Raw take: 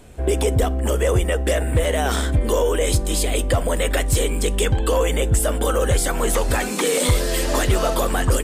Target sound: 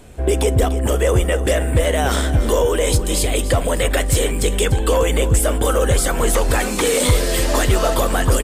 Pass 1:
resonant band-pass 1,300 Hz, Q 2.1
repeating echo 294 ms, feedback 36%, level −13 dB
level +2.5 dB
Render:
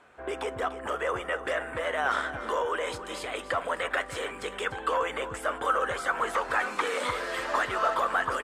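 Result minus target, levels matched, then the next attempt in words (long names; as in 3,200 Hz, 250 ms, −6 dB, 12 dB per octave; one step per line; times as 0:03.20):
1,000 Hz band +8.5 dB
repeating echo 294 ms, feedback 36%, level −13 dB
level +2.5 dB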